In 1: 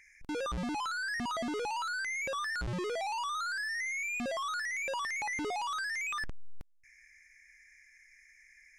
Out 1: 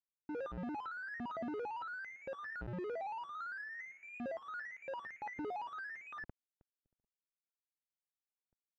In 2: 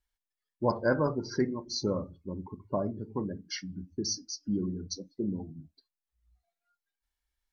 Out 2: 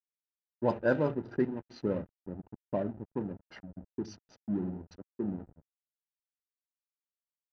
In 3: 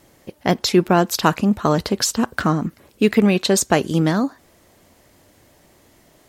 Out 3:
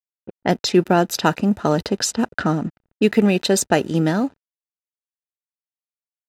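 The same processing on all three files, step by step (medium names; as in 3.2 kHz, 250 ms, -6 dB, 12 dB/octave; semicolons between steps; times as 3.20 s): hysteresis with a dead band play -34 dBFS; comb of notches 1.1 kHz; level-controlled noise filter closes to 1.3 kHz, open at -15.5 dBFS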